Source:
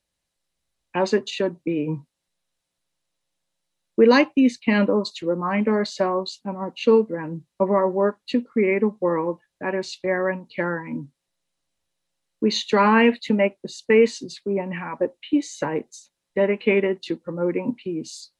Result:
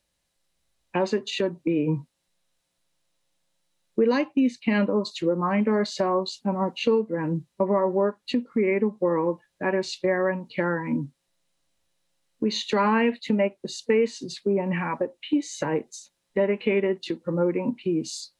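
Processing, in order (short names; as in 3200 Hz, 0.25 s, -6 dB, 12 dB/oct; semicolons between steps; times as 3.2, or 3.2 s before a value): compressor 4:1, threshold -26 dBFS, peak gain reduction 13.5 dB; harmonic-percussive split percussive -5 dB; gain +6 dB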